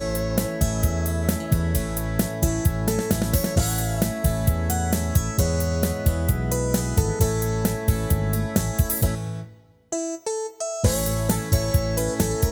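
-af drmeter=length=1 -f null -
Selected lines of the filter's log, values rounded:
Channel 1: DR: 11.4
Overall DR: 11.4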